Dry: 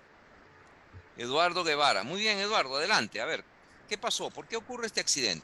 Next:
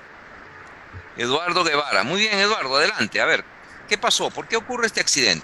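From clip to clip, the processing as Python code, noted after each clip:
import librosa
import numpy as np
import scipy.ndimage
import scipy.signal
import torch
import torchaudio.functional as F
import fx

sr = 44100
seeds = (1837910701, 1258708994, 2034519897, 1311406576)

y = fx.peak_eq(x, sr, hz=1600.0, db=6.0, octaves=1.3)
y = fx.over_compress(y, sr, threshold_db=-27.0, ratio=-0.5)
y = y * librosa.db_to_amplitude(9.0)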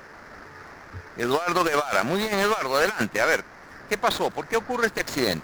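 y = scipy.signal.medfilt(x, 15)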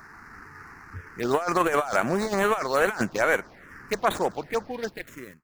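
y = fx.fade_out_tail(x, sr, length_s=1.11)
y = fx.env_phaser(y, sr, low_hz=490.0, high_hz=5000.0, full_db=-18.5)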